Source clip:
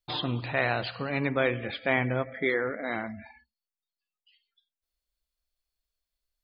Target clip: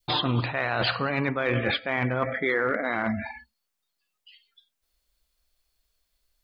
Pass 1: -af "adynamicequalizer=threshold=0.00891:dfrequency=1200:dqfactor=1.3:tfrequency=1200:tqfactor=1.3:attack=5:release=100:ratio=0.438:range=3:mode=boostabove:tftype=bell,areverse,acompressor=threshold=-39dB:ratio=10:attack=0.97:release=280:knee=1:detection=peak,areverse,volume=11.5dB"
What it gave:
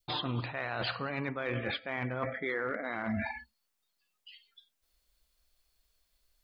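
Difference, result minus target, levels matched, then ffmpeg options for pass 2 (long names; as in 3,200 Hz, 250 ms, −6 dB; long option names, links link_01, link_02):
downward compressor: peak gain reduction +9 dB
-af "adynamicequalizer=threshold=0.00891:dfrequency=1200:dqfactor=1.3:tfrequency=1200:tqfactor=1.3:attack=5:release=100:ratio=0.438:range=3:mode=boostabove:tftype=bell,areverse,acompressor=threshold=-29dB:ratio=10:attack=0.97:release=280:knee=1:detection=peak,areverse,volume=11.5dB"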